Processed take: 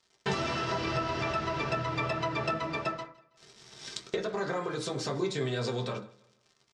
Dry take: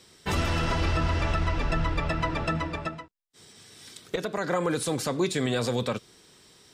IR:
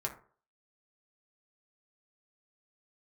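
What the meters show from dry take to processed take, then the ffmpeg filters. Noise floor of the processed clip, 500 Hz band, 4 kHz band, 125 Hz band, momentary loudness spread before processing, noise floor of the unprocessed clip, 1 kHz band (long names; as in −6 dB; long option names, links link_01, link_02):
−70 dBFS, −2.5 dB, −2.5 dB, −7.0 dB, 10 LU, −57 dBFS, −2.0 dB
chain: -filter_complex "[0:a]highpass=160,aeval=exprs='sgn(val(0))*max(abs(val(0))-0.00355,0)':channel_layout=same,lowpass=frequency=5800:width=0.5412,lowpass=frequency=5800:width=1.3066,tiltshelf=frequency=970:gain=3.5,acompressor=threshold=-42dB:ratio=5,crystalizer=i=4:c=0,aecho=1:1:162|324|486:0.0794|0.0294|0.0109[link_01];[1:a]atrim=start_sample=2205,atrim=end_sample=6174[link_02];[link_01][link_02]afir=irnorm=-1:irlink=0,volume=7.5dB"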